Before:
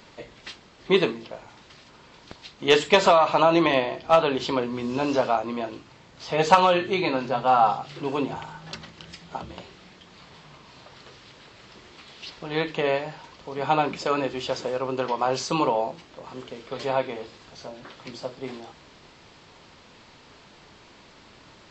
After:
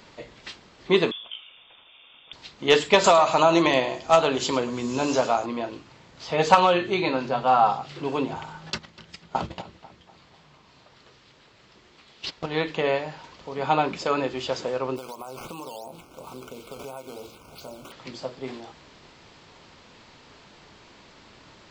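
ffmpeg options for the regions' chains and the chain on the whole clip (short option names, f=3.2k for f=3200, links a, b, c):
-filter_complex "[0:a]asettb=1/sr,asplit=3[a][b][c];[a]atrim=end=1.114[d];[b]atrim=start=1.11:end=2.33,asetpts=PTS-STARTPTS,afade=t=in:d=0.004:c=qsin,afade=t=out:st=1.216:d=0.004:c=qsin,equalizer=f=1.9k:t=o:w=0.47:g=-11,lowpass=f=3.1k:t=q:w=0.5098,lowpass=f=3.1k:t=q:w=0.6013,lowpass=f=3.1k:t=q:w=0.9,lowpass=f=3.1k:t=q:w=2.563,afreqshift=-3700[e];[c]atrim=start=2.326[f];[d][e]acrossfade=d=0.004:c1=hsin:c2=qsin[g];[g][f]acrossfade=d=0.004:c1=qsin:c2=hsin,asettb=1/sr,asplit=3[h][i][j];[h]atrim=end=3.044[k];[i]atrim=start=3.04:end=5.46,asetpts=PTS-STARTPTS,afade=t=in:d=0.004:c=qsin,afade=t=out:st=2.416:d=0.004:c=qsin,lowpass=f=7.1k:t=q:w=5.4,aecho=1:1:106:0.168,atrim=end_sample=106722[l];[j]atrim=start=5.456[m];[k][l]acrossfade=d=0.004:c1=hsin:c2=qsin[n];[n][m]acrossfade=d=0.004:c1=qsin:c2=hsin,asettb=1/sr,asplit=3[o][p][q];[o]atrim=end=8.704[r];[p]atrim=start=8.7:end=12.46,asetpts=PTS-STARTPTS,afade=t=in:d=0.004:c=qsin,afade=t=out:st=3.756:d=0.004:c=qsin,agate=range=-14dB:threshold=-40dB:ratio=16:release=100:detection=peak,acontrast=88,asplit=2[s][t];[t]adelay=247,lowpass=f=2.4k:p=1,volume=-15dB,asplit=2[u][v];[v]adelay=247,lowpass=f=2.4k:p=1,volume=0.49,asplit=2[w][x];[x]adelay=247,lowpass=f=2.4k:p=1,volume=0.49,asplit=2[y][z];[z]adelay=247,lowpass=f=2.4k:p=1,volume=0.49,asplit=2[aa][ab];[ab]adelay=247,lowpass=f=2.4k:p=1,volume=0.49[ac];[s][u][w][y][aa][ac]amix=inputs=6:normalize=0,atrim=end_sample=165816[ad];[q]atrim=start=12.456[ae];[r][ad]acrossfade=d=0.004:c1=hsin:c2=qsin[af];[af][ae]acrossfade=d=0.004:c1=qsin:c2=hsin,asettb=1/sr,asplit=3[ag][ah][ai];[ag]atrim=end=14.964[aj];[ah]atrim=start=14.96:end=17.92,asetpts=PTS-STARTPTS,afade=t=in:d=0.004:c=qsin,afade=t=out:st=2.956:d=0.004:c=qsin,acrusher=samples=8:mix=1:aa=0.000001:lfo=1:lforange=8:lforate=2.9,acompressor=threshold=-34dB:ratio=8:attack=3.2:release=140:knee=1:detection=peak,asuperstop=centerf=1800:order=20:qfactor=3.1[ak];[ai]atrim=start=17.916[al];[aj][ak]acrossfade=d=0.004:c1=hsin:c2=qsin[am];[am][al]acrossfade=d=0.004:c1=qsin:c2=hsin"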